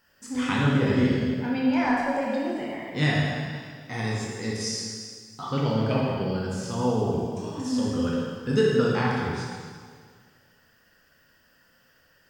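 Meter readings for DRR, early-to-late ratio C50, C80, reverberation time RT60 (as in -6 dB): -4.5 dB, -1.5 dB, 1.0 dB, 1.9 s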